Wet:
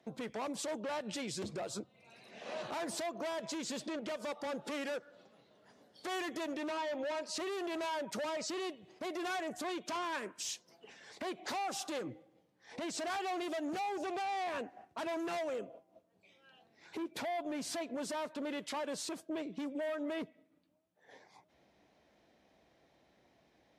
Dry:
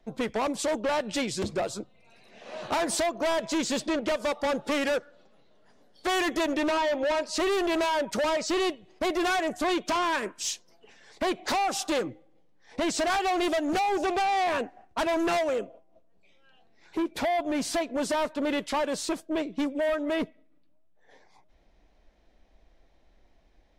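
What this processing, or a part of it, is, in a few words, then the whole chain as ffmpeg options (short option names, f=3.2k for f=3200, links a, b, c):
podcast mastering chain: -af "highpass=f=94:w=0.5412,highpass=f=94:w=1.3066,deesser=0.65,acompressor=threshold=-29dB:ratio=2.5,alimiter=level_in=7.5dB:limit=-24dB:level=0:latency=1:release=217,volume=-7.5dB" -ar 32000 -c:a libmp3lame -b:a 96k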